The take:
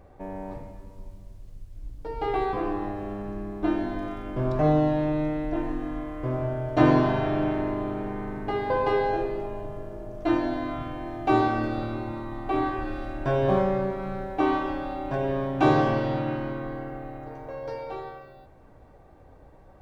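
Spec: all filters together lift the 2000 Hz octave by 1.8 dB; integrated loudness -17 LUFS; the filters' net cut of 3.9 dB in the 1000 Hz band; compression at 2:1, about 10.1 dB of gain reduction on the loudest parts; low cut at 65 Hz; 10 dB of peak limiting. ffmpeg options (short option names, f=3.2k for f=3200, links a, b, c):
-af "highpass=65,equalizer=f=1k:t=o:g=-6.5,equalizer=f=2k:t=o:g=5,acompressor=threshold=-33dB:ratio=2,volume=19dB,alimiter=limit=-7.5dB:level=0:latency=1"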